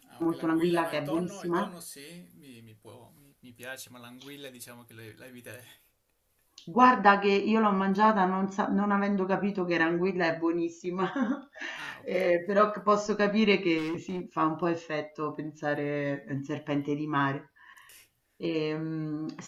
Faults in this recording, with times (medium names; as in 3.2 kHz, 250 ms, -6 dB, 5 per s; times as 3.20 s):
13.77–14.21 s: clipped -29.5 dBFS